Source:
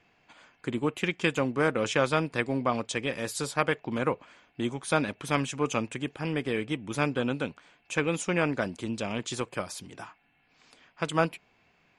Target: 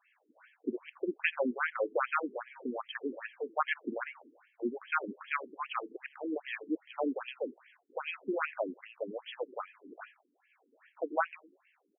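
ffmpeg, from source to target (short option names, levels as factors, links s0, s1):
-filter_complex "[0:a]asplit=5[s0][s1][s2][s3][s4];[s1]adelay=84,afreqshift=-110,volume=0.0668[s5];[s2]adelay=168,afreqshift=-220,volume=0.0412[s6];[s3]adelay=252,afreqshift=-330,volume=0.0257[s7];[s4]adelay=336,afreqshift=-440,volume=0.0158[s8];[s0][s5][s6][s7][s8]amix=inputs=5:normalize=0,afftfilt=real='re*between(b*sr/1024,300*pow(2400/300,0.5+0.5*sin(2*PI*2.5*pts/sr))/1.41,300*pow(2400/300,0.5+0.5*sin(2*PI*2.5*pts/sr))*1.41)':imag='im*between(b*sr/1024,300*pow(2400/300,0.5+0.5*sin(2*PI*2.5*pts/sr))/1.41,300*pow(2400/300,0.5+0.5*sin(2*PI*2.5*pts/sr))*1.41)':win_size=1024:overlap=0.75"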